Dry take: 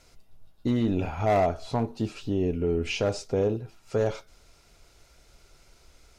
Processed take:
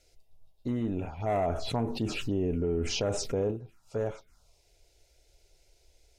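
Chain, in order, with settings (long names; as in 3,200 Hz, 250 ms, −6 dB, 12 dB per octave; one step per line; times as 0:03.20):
phaser swept by the level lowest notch 180 Hz, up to 4,700 Hz, full sweep at −23.5 dBFS
0:01.34–0:03.51: envelope flattener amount 70%
level −6 dB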